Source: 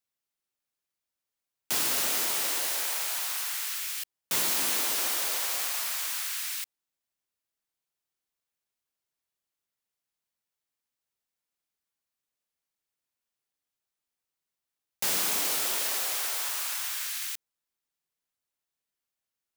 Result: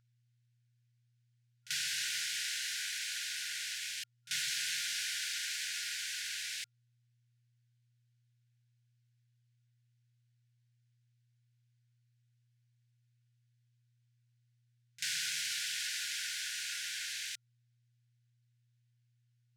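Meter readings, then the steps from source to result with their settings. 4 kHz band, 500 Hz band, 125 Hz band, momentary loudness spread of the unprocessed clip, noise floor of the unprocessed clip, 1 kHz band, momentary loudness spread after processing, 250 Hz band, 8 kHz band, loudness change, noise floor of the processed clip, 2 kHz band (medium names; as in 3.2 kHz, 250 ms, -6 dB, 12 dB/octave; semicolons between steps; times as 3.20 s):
-3.0 dB, under -40 dB, -7.0 dB, 7 LU, under -85 dBFS, -17.5 dB, 6 LU, under -25 dB, -8.0 dB, -8.5 dB, -74 dBFS, -2.5 dB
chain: low-pass 6.3 kHz 12 dB/octave; mains buzz 120 Hz, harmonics 9, -64 dBFS -3 dB/octave; bass shelf 210 Hz -9.5 dB; in parallel at +1.5 dB: compression, threshold -43 dBFS, peak gain reduction 13.5 dB; on the sum: pre-echo 39 ms -18 dB; FFT band-reject 170–1400 Hz; trim -5 dB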